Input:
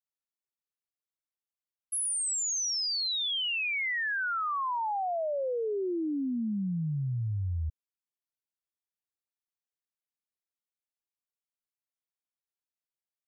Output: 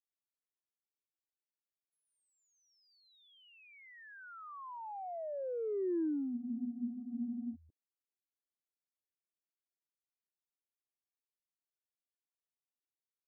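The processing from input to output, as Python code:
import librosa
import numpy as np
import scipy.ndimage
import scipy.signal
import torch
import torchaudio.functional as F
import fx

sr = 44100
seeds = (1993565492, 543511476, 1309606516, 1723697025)

y = fx.ladder_bandpass(x, sr, hz=380.0, resonance_pct=45)
y = fx.cheby_harmonics(y, sr, harmonics=(3, 5), levels_db=(-36, -35), full_scale_db=-33.5)
y = fx.spec_freeze(y, sr, seeds[0], at_s=6.37, hold_s=1.17)
y = F.gain(torch.from_numpy(y), 3.5).numpy()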